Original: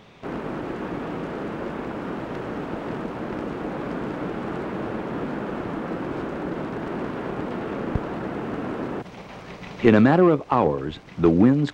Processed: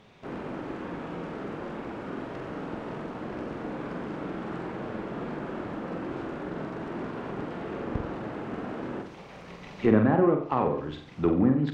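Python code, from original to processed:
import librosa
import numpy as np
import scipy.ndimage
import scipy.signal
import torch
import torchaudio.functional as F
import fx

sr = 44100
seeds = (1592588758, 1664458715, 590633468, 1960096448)

y = fx.env_lowpass_down(x, sr, base_hz=1700.0, full_db=-12.5)
y = fx.room_flutter(y, sr, wall_m=7.9, rt60_s=0.49)
y = y * librosa.db_to_amplitude(-7.0)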